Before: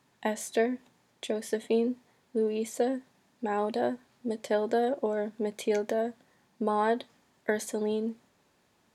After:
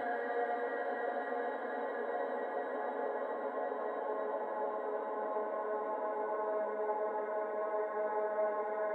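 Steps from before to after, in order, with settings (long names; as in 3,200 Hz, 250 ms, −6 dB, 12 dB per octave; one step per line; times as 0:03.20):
band-pass filter sweep 3,900 Hz → 390 Hz, 0:02.95–0:06.74
extreme stretch with random phases 38×, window 0.50 s, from 0:04.89
thirty-one-band graphic EQ 100 Hz +10 dB, 200 Hz −9 dB, 315 Hz +10 dB, 2,000 Hz +10 dB, 4,000 Hz −4 dB
level +3.5 dB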